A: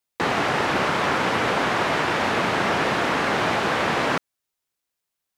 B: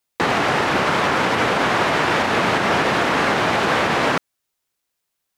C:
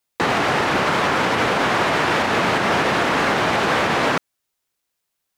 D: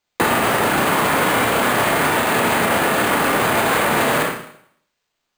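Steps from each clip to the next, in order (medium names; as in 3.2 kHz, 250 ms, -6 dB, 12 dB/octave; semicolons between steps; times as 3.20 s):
peak limiter -14 dBFS, peak gain reduction 5 dB; trim +5 dB
overload inside the chain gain 12.5 dB
Schroeder reverb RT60 0.65 s, combs from 26 ms, DRR -1 dB; peak limiter -13 dBFS, peak gain reduction 9 dB; careless resampling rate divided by 4×, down filtered, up hold; trim +4 dB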